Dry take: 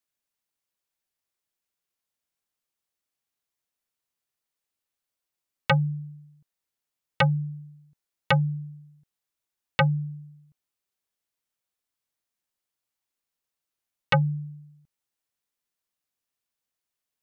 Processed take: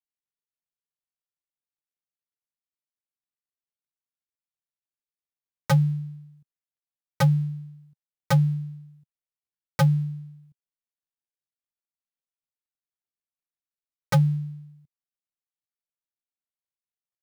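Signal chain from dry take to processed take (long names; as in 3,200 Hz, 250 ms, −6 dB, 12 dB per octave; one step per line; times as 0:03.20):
gap after every zero crossing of 0.15 ms
parametric band 140 Hz +6.5 dB 1.2 octaves
level −2.5 dB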